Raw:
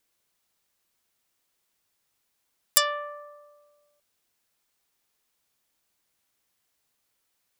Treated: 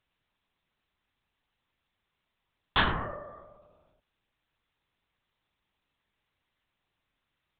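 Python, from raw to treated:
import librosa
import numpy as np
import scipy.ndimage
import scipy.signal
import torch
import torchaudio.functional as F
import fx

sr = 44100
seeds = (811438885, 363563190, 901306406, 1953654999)

y = fx.lpc_vocoder(x, sr, seeds[0], excitation='whisper', order=8)
y = F.gain(torch.from_numpy(y), 1.0).numpy()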